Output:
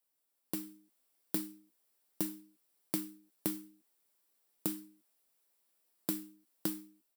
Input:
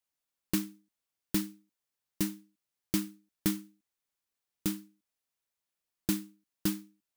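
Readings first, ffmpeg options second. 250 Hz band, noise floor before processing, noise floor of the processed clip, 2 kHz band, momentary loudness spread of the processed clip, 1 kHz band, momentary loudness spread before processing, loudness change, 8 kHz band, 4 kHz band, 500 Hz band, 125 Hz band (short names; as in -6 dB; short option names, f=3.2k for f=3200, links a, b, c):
-7.0 dB, under -85 dBFS, -81 dBFS, -8.5 dB, 11 LU, -2.5 dB, 11 LU, -4.0 dB, -4.5 dB, -7.5 dB, -2.5 dB, -10.0 dB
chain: -filter_complex "[0:a]asplit=2[a][b];[b]adelay=12,volume=-8dB[c];[a][c]amix=inputs=2:normalize=0,acompressor=threshold=-44dB:ratio=4,equalizer=f=2.3k:w=0.31:g=-9.5,dynaudnorm=f=410:g=3:m=6dB,highpass=290,bandreject=f=6.5k:w=7.3,volume=8dB"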